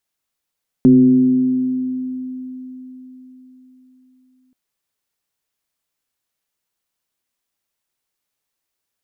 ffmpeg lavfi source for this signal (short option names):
-f lavfi -i "aevalsrc='0.562*pow(10,-3*t/4.3)*sin(2*PI*256*t+0.52*pow(10,-3*t/3.62)*sin(2*PI*0.47*256*t))':d=3.68:s=44100"